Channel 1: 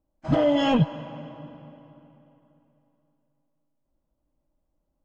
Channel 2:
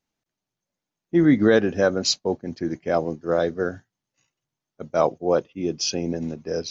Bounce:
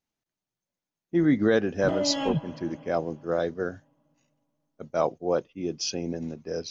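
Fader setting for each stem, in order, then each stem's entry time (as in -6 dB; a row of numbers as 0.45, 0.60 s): -7.5, -5.0 dB; 1.55, 0.00 s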